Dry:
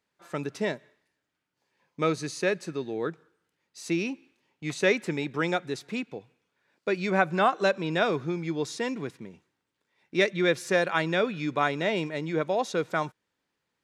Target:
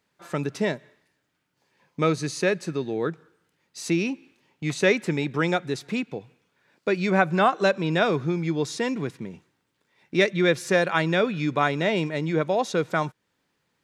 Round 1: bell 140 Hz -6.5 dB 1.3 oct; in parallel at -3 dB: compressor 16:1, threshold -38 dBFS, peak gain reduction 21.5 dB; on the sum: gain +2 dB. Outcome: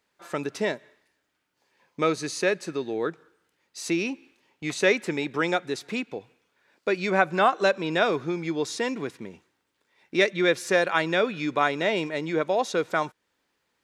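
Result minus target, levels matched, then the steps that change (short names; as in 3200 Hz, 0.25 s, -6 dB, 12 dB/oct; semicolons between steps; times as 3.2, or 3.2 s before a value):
125 Hz band -7.5 dB
change: bell 140 Hz +4 dB 1.3 oct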